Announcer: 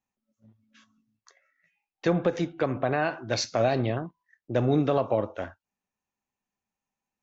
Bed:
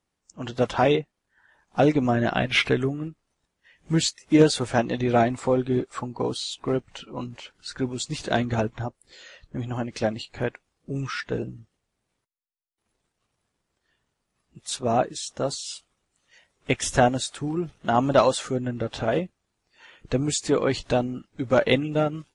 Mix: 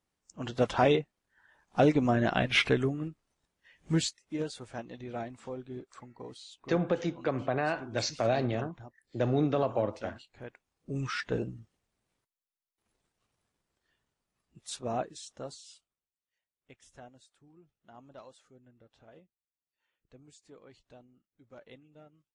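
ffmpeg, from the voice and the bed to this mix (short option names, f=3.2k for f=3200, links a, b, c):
-filter_complex "[0:a]adelay=4650,volume=-4dB[a];[1:a]volume=10.5dB,afade=t=out:st=3.91:d=0.31:silence=0.199526,afade=t=in:st=10.45:d=0.63:silence=0.188365,afade=t=out:st=13.23:d=2.93:silence=0.0375837[b];[a][b]amix=inputs=2:normalize=0"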